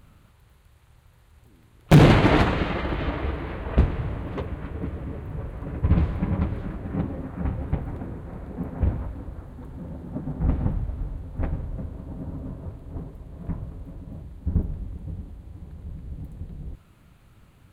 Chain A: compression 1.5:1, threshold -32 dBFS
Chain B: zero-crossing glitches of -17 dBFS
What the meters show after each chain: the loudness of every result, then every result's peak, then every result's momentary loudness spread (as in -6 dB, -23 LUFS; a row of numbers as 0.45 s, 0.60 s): -33.0 LUFS, -26.5 LUFS; -8.5 dBFS, -4.5 dBFS; 12 LU, 11 LU